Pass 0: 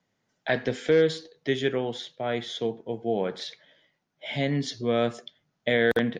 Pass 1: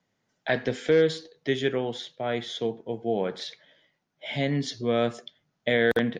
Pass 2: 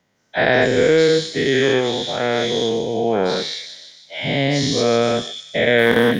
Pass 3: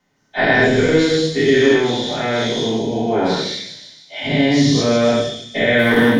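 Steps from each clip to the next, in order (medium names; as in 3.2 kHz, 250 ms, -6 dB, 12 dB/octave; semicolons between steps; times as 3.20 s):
no audible change
every event in the spectrogram widened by 240 ms; feedback echo behind a high-pass 152 ms, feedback 57%, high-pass 4.4 kHz, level -5 dB; trim +4 dB
reverberation RT60 0.55 s, pre-delay 3 ms, DRR -5 dB; trim -5 dB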